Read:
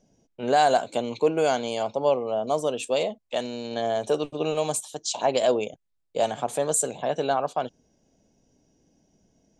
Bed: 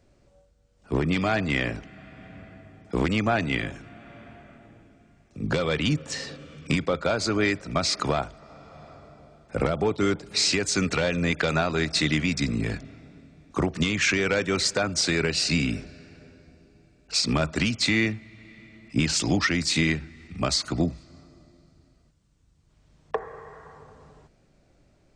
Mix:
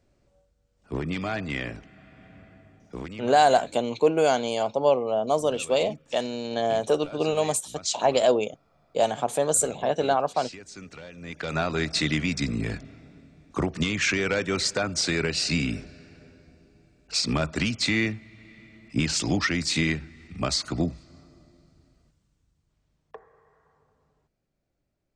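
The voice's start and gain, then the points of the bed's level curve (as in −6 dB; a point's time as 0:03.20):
2.80 s, +1.5 dB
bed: 0:02.74 −5.5 dB
0:03.29 −18.5 dB
0:11.16 −18.5 dB
0:11.62 −1.5 dB
0:22.14 −1.5 dB
0:23.29 −18 dB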